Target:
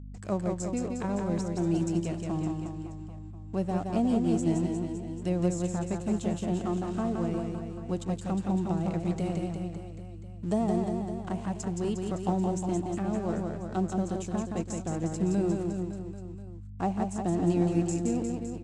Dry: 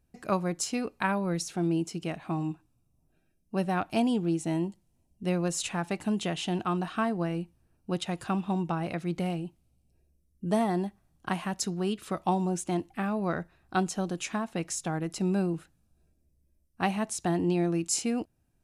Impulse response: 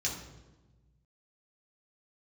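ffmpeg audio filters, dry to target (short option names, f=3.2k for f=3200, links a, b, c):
-filter_complex "[0:a]asettb=1/sr,asplit=3[a][b][c];[a]atrim=end=15.434[d];[b]atrim=start=15.43:end=16.93,asetpts=PTS-STARTPTS,afade=t=in:d=0.004:c=qsin,afade=t=out:st=1.496:d=0.004:c=qsin,equalizer=f=1.2k:w=0.61:g=6[e];[c]atrim=start=16.926[f];[d][e]acrossfade=d=0.004:c1=hsin:c2=qsin[g];[g][f]acrossfade=d=0.004:c1=qsin:c2=hsin,acrossover=split=740[h][i];[i]acompressor=threshold=-48dB:ratio=6[j];[h][j]amix=inputs=2:normalize=0,aeval=exprs='sgn(val(0))*max(abs(val(0))-0.00251,0)':c=same,aeval=exprs='val(0)+0.00891*(sin(2*PI*50*n/s)+sin(2*PI*2*50*n/s)/2+sin(2*PI*3*50*n/s)/3+sin(2*PI*4*50*n/s)/4+sin(2*PI*5*50*n/s)/5)':c=same,lowpass=f=7.6k:t=q:w=4.4,asplit=2[k][l];[l]aecho=0:1:170|357|562.7|789|1038:0.631|0.398|0.251|0.158|0.1[m];[k][m]amix=inputs=2:normalize=0"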